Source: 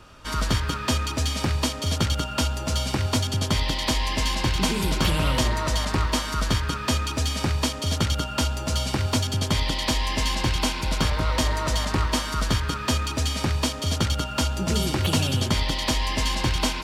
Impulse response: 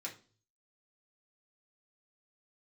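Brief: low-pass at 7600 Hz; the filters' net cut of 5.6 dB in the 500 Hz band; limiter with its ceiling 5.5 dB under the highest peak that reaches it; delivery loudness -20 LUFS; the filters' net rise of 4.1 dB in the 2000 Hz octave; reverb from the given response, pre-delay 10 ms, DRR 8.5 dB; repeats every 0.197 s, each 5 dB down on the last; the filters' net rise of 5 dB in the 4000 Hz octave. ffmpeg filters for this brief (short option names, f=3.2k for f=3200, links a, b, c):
-filter_complex "[0:a]lowpass=7.6k,equalizer=f=500:t=o:g=-8,equalizer=f=2k:t=o:g=4,equalizer=f=4k:t=o:g=5.5,alimiter=limit=-14dB:level=0:latency=1,aecho=1:1:197|394|591|788|985|1182|1379:0.562|0.315|0.176|0.0988|0.0553|0.031|0.0173,asplit=2[a][b];[1:a]atrim=start_sample=2205,adelay=10[c];[b][c]afir=irnorm=-1:irlink=0,volume=-7.5dB[d];[a][d]amix=inputs=2:normalize=0,volume=2dB"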